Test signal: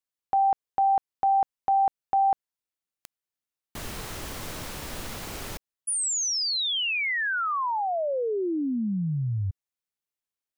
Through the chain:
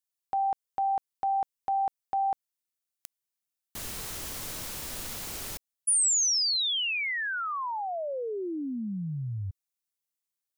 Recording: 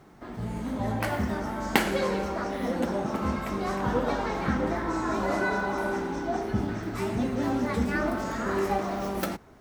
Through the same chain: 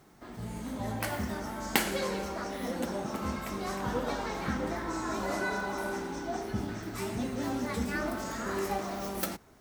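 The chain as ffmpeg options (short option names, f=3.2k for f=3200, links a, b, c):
-af "highshelf=f=3.9k:g=11,volume=-6dB"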